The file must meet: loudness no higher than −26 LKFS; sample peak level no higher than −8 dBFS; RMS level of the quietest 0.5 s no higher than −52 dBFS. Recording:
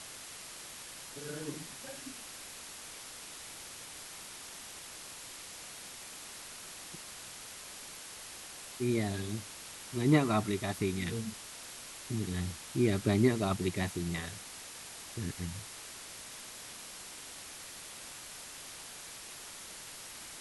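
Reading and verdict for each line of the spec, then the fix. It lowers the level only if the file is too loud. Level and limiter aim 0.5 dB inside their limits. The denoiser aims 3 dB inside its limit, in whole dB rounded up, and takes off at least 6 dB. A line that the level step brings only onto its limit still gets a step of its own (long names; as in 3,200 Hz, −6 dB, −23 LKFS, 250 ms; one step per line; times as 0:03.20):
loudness −37.5 LKFS: in spec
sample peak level −13.0 dBFS: in spec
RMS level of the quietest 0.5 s −47 dBFS: out of spec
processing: broadband denoise 8 dB, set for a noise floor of −47 dBFS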